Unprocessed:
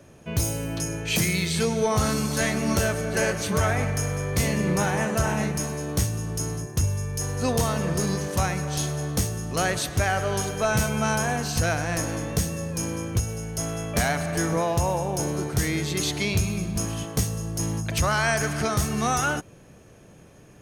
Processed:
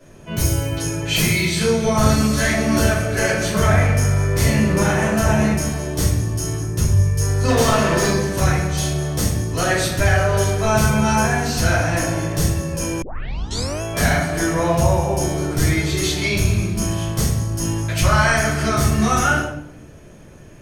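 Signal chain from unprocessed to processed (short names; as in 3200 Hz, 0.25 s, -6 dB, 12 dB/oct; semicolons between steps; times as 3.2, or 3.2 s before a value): 7.48–8.09 overdrive pedal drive 17 dB, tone 4900 Hz, clips at -14.5 dBFS; shoebox room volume 150 m³, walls mixed, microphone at 3 m; 13.02 tape start 0.80 s; gain -4.5 dB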